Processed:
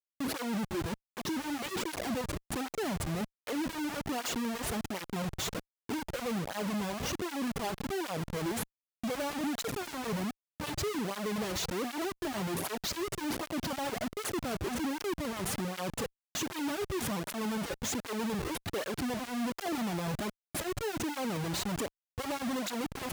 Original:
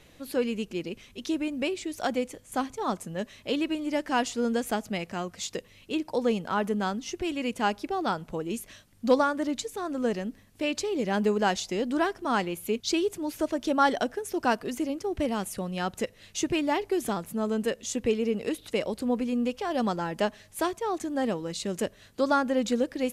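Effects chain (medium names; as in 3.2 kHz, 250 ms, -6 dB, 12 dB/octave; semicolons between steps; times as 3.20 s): peaking EQ 1.3 kHz -13 dB 1.1 oct; Schmitt trigger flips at -40 dBFS; cancelling through-zero flanger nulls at 1.3 Hz, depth 4.6 ms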